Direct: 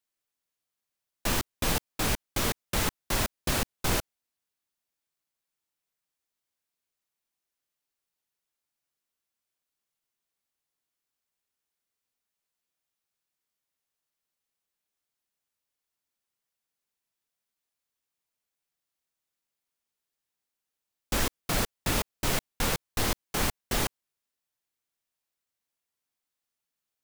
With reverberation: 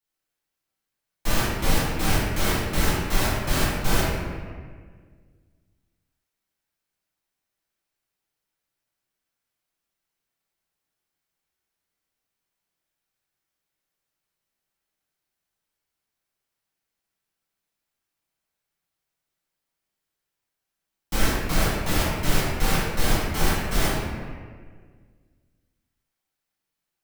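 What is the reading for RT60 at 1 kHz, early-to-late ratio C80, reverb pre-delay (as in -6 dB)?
1.6 s, 0.5 dB, 4 ms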